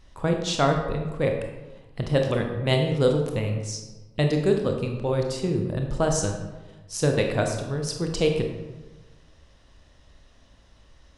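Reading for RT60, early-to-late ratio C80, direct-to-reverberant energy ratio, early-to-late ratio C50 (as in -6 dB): 1.2 s, 7.5 dB, 2.5 dB, 5.0 dB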